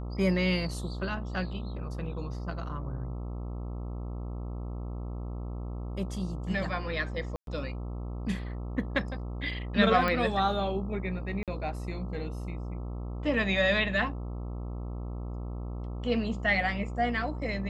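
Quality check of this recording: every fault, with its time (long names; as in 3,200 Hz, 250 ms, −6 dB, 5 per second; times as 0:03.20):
mains buzz 60 Hz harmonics 22 −36 dBFS
0:07.36–0:07.47: drop-out 112 ms
0:10.08: click −17 dBFS
0:11.43–0:11.48: drop-out 47 ms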